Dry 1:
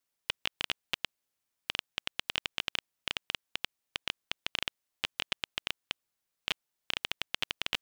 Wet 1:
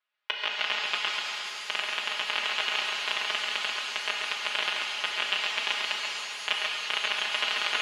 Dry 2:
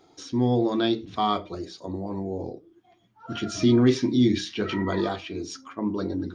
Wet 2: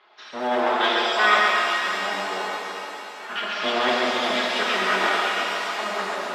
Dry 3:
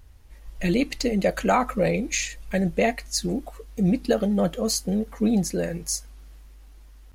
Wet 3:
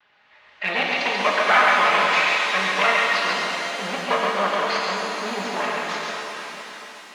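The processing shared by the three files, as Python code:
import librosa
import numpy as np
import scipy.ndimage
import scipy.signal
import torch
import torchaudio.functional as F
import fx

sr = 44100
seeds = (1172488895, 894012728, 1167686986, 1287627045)

p1 = fx.lower_of_two(x, sr, delay_ms=4.8)
p2 = scipy.signal.sosfilt(scipy.signal.butter(4, 3500.0, 'lowpass', fs=sr, output='sos'), p1)
p3 = fx.high_shelf(p2, sr, hz=2700.0, db=-5.5)
p4 = np.clip(p3, -10.0 ** (-19.5 / 20.0), 10.0 ** (-19.5 / 20.0))
p5 = p3 + (p4 * librosa.db_to_amplitude(-5.0))
p6 = scipy.signal.sosfilt(scipy.signal.butter(2, 1100.0, 'highpass', fs=sr, output='sos'), p5)
p7 = p6 + 10.0 ** (-4.0 / 20.0) * np.pad(p6, (int(137 * sr / 1000.0), 0))[:len(p6)]
p8 = fx.rev_shimmer(p7, sr, seeds[0], rt60_s=3.8, semitones=7, shimmer_db=-8, drr_db=-1.5)
y = p8 * librosa.db_to_amplitude(7.5)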